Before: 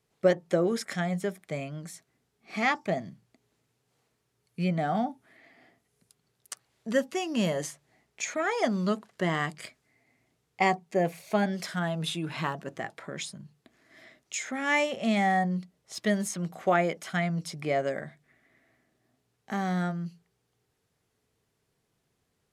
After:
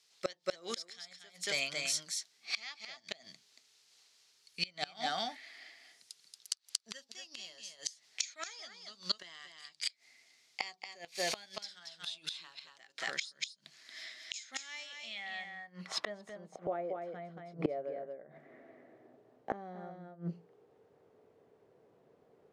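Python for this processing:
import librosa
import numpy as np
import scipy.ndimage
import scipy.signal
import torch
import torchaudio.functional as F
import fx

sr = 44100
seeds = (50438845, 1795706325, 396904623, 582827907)

y = fx.dynamic_eq(x, sr, hz=4200.0, q=1.4, threshold_db=-52.0, ratio=4.0, max_db=7)
y = fx.filter_sweep_bandpass(y, sr, from_hz=4800.0, to_hz=500.0, start_s=14.79, end_s=16.56, q=1.8)
y = y + 10.0 ** (-4.0 / 20.0) * np.pad(y, (int(230 * sr / 1000.0), 0))[:len(y)]
y = fx.gate_flip(y, sr, shuts_db=-35.0, range_db=-26)
y = y * 10.0 ** (16.5 / 20.0)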